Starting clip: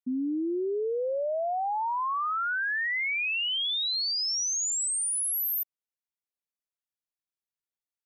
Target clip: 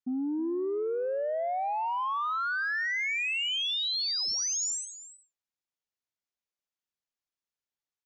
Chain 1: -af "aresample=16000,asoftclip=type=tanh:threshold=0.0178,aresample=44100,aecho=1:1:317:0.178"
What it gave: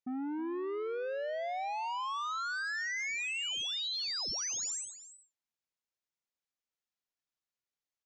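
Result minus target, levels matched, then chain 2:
saturation: distortion +13 dB
-af "aresample=16000,asoftclip=type=tanh:threshold=0.0562,aresample=44100,aecho=1:1:317:0.178"

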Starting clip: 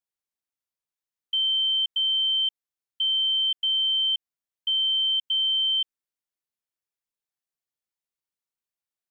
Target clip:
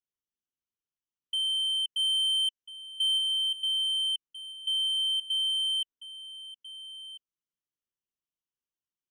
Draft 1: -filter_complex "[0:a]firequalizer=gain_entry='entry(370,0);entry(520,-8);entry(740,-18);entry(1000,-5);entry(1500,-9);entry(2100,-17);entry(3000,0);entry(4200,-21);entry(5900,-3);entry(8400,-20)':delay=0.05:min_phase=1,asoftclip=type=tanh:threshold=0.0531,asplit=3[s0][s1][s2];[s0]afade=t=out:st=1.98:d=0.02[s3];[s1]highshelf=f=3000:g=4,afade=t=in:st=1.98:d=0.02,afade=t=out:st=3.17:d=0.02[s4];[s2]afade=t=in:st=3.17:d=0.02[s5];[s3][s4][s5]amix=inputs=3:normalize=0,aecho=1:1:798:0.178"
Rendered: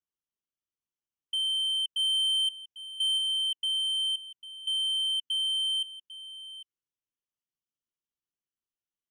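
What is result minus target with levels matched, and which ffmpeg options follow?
echo 546 ms early
-filter_complex "[0:a]firequalizer=gain_entry='entry(370,0);entry(520,-8);entry(740,-18);entry(1000,-5);entry(1500,-9);entry(2100,-17);entry(3000,0);entry(4200,-21);entry(5900,-3);entry(8400,-20)':delay=0.05:min_phase=1,asoftclip=type=tanh:threshold=0.0531,asplit=3[s0][s1][s2];[s0]afade=t=out:st=1.98:d=0.02[s3];[s1]highshelf=f=3000:g=4,afade=t=in:st=1.98:d=0.02,afade=t=out:st=3.17:d=0.02[s4];[s2]afade=t=in:st=3.17:d=0.02[s5];[s3][s4][s5]amix=inputs=3:normalize=0,aecho=1:1:1344:0.178"

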